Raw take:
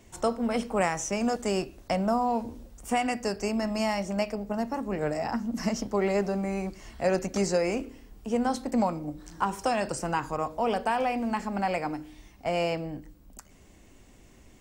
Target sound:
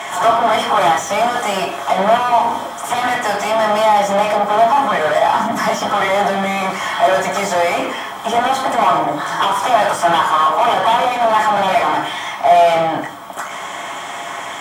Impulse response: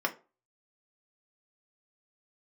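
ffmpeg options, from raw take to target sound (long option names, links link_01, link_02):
-filter_complex "[0:a]lowshelf=frequency=590:width_type=q:width=1.5:gain=-12.5,asplit=2[link_01][link_02];[link_02]asetrate=55563,aresample=44100,atempo=0.793701,volume=-18dB[link_03];[link_01][link_03]amix=inputs=2:normalize=0,aeval=exprs='0.282*sin(PI/2*4.47*val(0)/0.282)':channel_layout=same,asplit=2[link_04][link_05];[link_05]highpass=frequency=720:poles=1,volume=31dB,asoftclip=type=tanh:threshold=-9dB[link_06];[link_04][link_06]amix=inputs=2:normalize=0,lowpass=frequency=5500:poles=1,volume=-6dB[link_07];[1:a]atrim=start_sample=2205,asetrate=26901,aresample=44100[link_08];[link_07][link_08]afir=irnorm=-1:irlink=0,volume=-12dB"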